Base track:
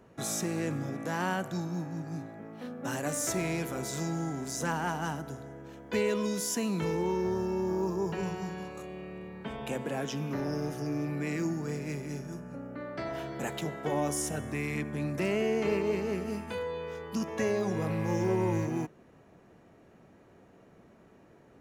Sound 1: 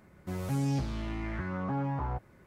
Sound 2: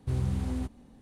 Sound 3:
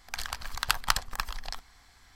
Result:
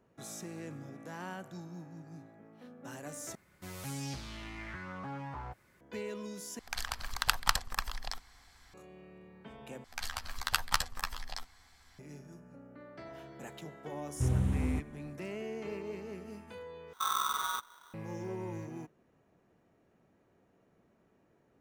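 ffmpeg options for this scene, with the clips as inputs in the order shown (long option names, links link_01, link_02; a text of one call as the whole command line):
ffmpeg -i bed.wav -i cue0.wav -i cue1.wav -i cue2.wav -filter_complex "[3:a]asplit=2[link_01][link_02];[2:a]asplit=2[link_03][link_04];[0:a]volume=-11.5dB[link_05];[1:a]tiltshelf=frequency=1300:gain=-7.5[link_06];[link_02]asplit=2[link_07][link_08];[link_08]adelay=12,volume=-6dB[link_09];[link_07][link_09]amix=inputs=2:normalize=0[link_10];[link_03]equalizer=frequency=4700:width_type=o:width=0.6:gain=-10.5[link_11];[link_04]aeval=exprs='val(0)*sgn(sin(2*PI*1200*n/s))':channel_layout=same[link_12];[link_05]asplit=5[link_13][link_14][link_15][link_16][link_17];[link_13]atrim=end=3.354[link_18];[link_06]atrim=end=2.46,asetpts=PTS-STARTPTS,volume=-4dB[link_19];[link_14]atrim=start=5.806:end=6.594[link_20];[link_01]atrim=end=2.15,asetpts=PTS-STARTPTS,volume=-2dB[link_21];[link_15]atrim=start=8.736:end=9.844[link_22];[link_10]atrim=end=2.15,asetpts=PTS-STARTPTS,volume=-4.5dB[link_23];[link_16]atrim=start=11.986:end=16.934[link_24];[link_12]atrim=end=1.01,asetpts=PTS-STARTPTS,volume=-4dB[link_25];[link_17]atrim=start=17.936[link_26];[link_11]atrim=end=1.01,asetpts=PTS-STARTPTS,afade=type=in:duration=0.004:curve=hsin,afade=type=out:start_time=1.006:duration=0.004:curve=hsin,adelay=14130[link_27];[link_18][link_19]acrossfade=duration=0.004:curve1=hsin:curve2=hsin[link_28];[link_28][link_20]acrossfade=duration=0.004:curve1=hsin:curve2=hsin[link_29];[link_29][link_21]acrossfade=duration=0.004:curve1=hsin:curve2=hsin[link_30];[link_30][link_22]acrossfade=duration=0.004:curve1=hsin:curve2=hsin[link_31];[link_31][link_23]acrossfade=duration=0.004:curve1=hsin:curve2=hsin[link_32];[link_32][link_24]acrossfade=duration=0.004:curve1=hsin:curve2=hsin[link_33];[link_33][link_25]acrossfade=duration=0.004:curve1=hsin:curve2=hsin[link_34];[link_34][link_26]acrossfade=duration=0.004:curve1=hsin:curve2=hsin[link_35];[link_35][link_27]amix=inputs=2:normalize=0" out.wav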